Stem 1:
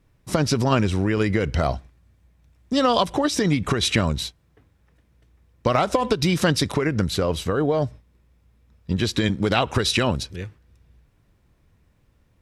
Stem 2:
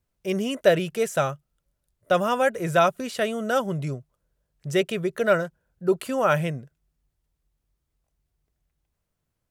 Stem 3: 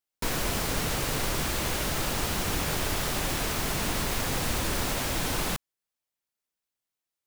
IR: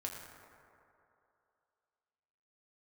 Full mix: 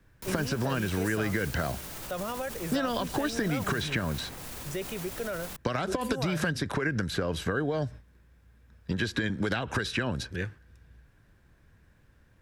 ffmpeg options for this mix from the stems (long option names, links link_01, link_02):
-filter_complex "[0:a]acompressor=threshold=-21dB:ratio=6,equalizer=frequency=1600:width_type=o:width=0.25:gain=13.5,volume=0dB[link_01];[1:a]volume=-7.5dB[link_02];[2:a]alimiter=limit=-23.5dB:level=0:latency=1:release=33,volume=-9.5dB[link_03];[link_02][link_03]amix=inputs=2:normalize=0,highshelf=frequency=7600:gain=9,alimiter=level_in=0.5dB:limit=-24dB:level=0:latency=1:release=37,volume=-0.5dB,volume=0dB[link_04];[link_01][link_04]amix=inputs=2:normalize=0,acrossover=split=99|350|2400[link_05][link_06][link_07][link_08];[link_05]acompressor=threshold=-43dB:ratio=4[link_09];[link_06]acompressor=threshold=-30dB:ratio=4[link_10];[link_07]acompressor=threshold=-31dB:ratio=4[link_11];[link_08]acompressor=threshold=-39dB:ratio=4[link_12];[link_09][link_10][link_11][link_12]amix=inputs=4:normalize=0"